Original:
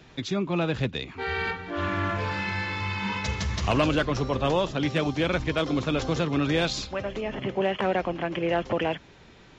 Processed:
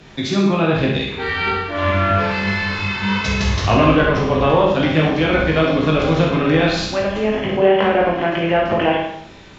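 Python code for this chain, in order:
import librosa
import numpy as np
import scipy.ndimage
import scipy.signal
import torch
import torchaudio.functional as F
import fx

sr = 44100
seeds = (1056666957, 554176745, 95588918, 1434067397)

y = fx.env_lowpass_down(x, sr, base_hz=2400.0, full_db=-20.0)
y = fx.room_early_taps(y, sr, ms=(19, 65), db=(-4.5, -6.0))
y = fx.rev_schroeder(y, sr, rt60_s=0.69, comb_ms=30, drr_db=1.0)
y = y * librosa.db_to_amplitude(6.5)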